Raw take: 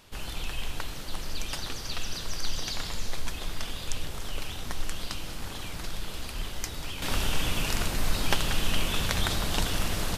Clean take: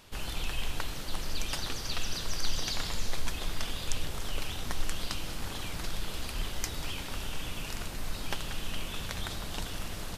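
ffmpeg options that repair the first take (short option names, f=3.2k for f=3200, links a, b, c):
-af "asetnsamples=n=441:p=0,asendcmd='7.02 volume volume -9dB',volume=0dB"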